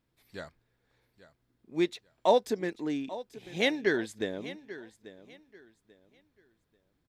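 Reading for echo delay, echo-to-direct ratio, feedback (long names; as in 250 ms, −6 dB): 839 ms, −15.5 dB, 26%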